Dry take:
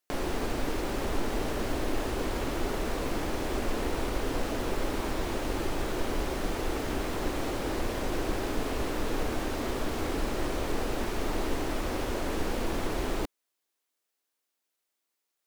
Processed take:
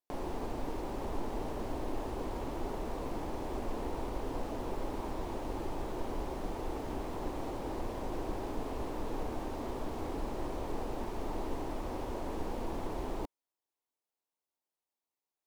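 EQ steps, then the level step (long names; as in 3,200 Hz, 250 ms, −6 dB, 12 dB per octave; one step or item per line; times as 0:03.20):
drawn EQ curve 590 Hz 0 dB, 930 Hz +4 dB, 1,400 Hz −7 dB
−6.5 dB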